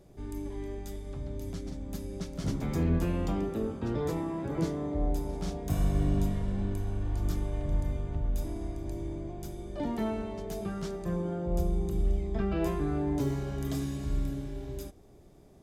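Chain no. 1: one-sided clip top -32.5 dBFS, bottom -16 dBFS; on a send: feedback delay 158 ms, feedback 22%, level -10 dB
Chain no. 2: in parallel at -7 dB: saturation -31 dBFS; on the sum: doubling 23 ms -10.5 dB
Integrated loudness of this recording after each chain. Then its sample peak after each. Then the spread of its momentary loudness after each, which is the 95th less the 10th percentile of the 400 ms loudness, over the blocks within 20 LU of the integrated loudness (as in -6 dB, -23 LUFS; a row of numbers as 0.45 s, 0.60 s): -35.0 LUFS, -30.5 LUFS; -16.5 dBFS, -14.0 dBFS; 8 LU, 8 LU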